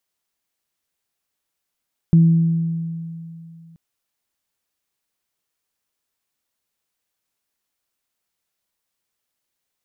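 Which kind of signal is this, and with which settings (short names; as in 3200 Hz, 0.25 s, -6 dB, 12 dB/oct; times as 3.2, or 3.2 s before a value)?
additive tone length 1.63 s, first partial 165 Hz, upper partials -19.5 dB, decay 2.72 s, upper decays 1.52 s, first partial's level -7.5 dB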